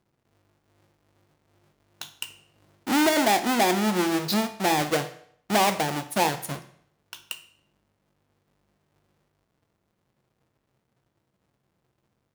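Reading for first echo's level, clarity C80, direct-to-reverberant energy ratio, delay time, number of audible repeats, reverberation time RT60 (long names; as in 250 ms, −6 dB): no echo audible, 16.0 dB, 8.0 dB, no echo audible, no echo audible, 0.60 s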